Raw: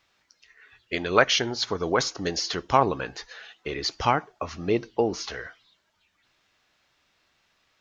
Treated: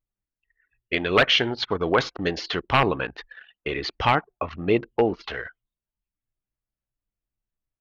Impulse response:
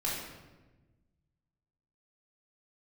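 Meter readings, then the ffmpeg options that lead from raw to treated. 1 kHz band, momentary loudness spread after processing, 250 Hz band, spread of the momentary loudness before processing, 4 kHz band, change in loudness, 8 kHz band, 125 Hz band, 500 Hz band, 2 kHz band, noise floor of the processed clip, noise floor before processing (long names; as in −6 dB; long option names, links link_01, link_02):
+0.5 dB, 14 LU, +2.5 dB, 15 LU, +2.5 dB, +2.0 dB, can't be measured, +3.5 dB, +2.0 dB, +4.0 dB, below −85 dBFS, −70 dBFS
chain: -af "aeval=exprs='0.237*(abs(mod(val(0)/0.237+3,4)-2)-1)':channel_layout=same,highshelf=frequency=4500:width_type=q:width=1.5:gain=-13,anlmdn=1,volume=3dB"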